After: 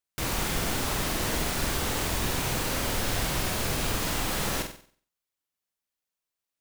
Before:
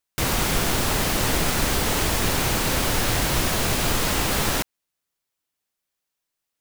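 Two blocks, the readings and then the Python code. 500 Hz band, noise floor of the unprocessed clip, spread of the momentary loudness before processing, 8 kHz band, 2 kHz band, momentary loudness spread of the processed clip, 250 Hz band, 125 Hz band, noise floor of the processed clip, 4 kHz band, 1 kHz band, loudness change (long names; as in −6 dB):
−6.0 dB, −83 dBFS, 1 LU, −6.0 dB, −6.0 dB, 1 LU, −6.0 dB, −6.0 dB, below −85 dBFS, −6.0 dB, −6.0 dB, −6.5 dB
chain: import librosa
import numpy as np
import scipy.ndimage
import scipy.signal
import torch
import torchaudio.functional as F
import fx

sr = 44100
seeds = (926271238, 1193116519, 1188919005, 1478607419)

y = fx.room_flutter(x, sr, wall_m=8.0, rt60_s=0.47)
y = y * librosa.db_to_amplitude(-7.5)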